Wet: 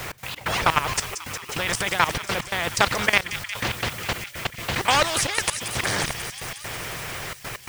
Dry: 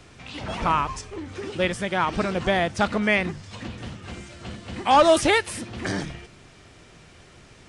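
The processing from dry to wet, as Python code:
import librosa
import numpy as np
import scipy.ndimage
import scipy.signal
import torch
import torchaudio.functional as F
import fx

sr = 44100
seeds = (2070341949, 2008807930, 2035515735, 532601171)

p1 = fx.hpss(x, sr, part='harmonic', gain_db=-9)
p2 = fx.vibrato(p1, sr, rate_hz=14.0, depth_cents=27.0)
p3 = fx.graphic_eq(p2, sr, hz=(125, 250, 500, 1000, 2000), db=(12, -10, 4, 5, 8))
p4 = fx.level_steps(p3, sr, step_db=17)
p5 = fx.dmg_noise_colour(p4, sr, seeds[0], colour='white', level_db=-60.0)
p6 = fx.step_gate(p5, sr, bpm=131, pattern='x.x.xxxxx', floor_db=-24.0, edge_ms=4.5)
p7 = p6 + fx.echo_wet_highpass(p6, sr, ms=180, feedback_pct=79, hz=4500.0, wet_db=-11.5, dry=0)
p8 = fx.spectral_comp(p7, sr, ratio=2.0)
y = F.gain(torch.from_numpy(p8), 4.0).numpy()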